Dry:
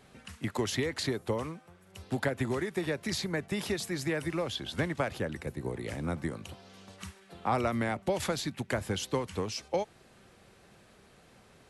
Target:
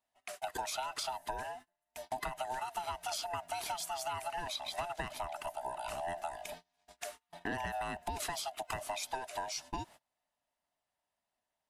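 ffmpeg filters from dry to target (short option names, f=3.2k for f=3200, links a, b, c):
-af "afftfilt=real='real(if(lt(b,1008),b+24*(1-2*mod(floor(b/24),2)),b),0)':imag='imag(if(lt(b,1008),b+24*(1-2*mod(floor(b/24),2)),b),0)':win_size=2048:overlap=0.75,lowshelf=f=350:g=-6,agate=range=-32dB:threshold=-49dB:ratio=16:detection=peak,highshelf=f=11k:g=11.5,acompressor=threshold=-41dB:ratio=3,volume=3dB"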